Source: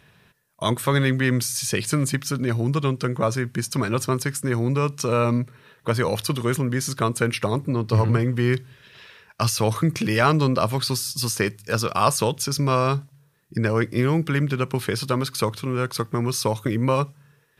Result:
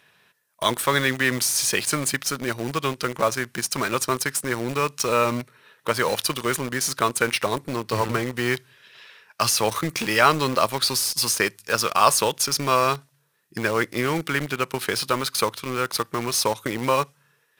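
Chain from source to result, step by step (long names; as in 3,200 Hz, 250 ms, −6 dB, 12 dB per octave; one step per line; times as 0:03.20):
high-pass filter 680 Hz 6 dB per octave
in parallel at −3.5 dB: bit reduction 5 bits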